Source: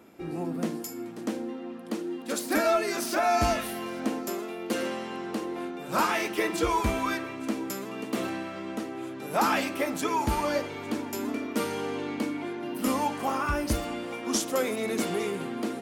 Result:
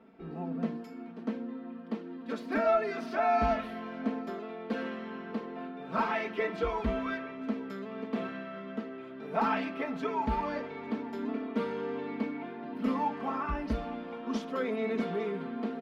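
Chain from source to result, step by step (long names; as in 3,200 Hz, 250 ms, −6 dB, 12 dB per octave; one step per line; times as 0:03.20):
high-frequency loss of the air 330 metres
comb filter 4.5 ms, depth 89%
level −5.5 dB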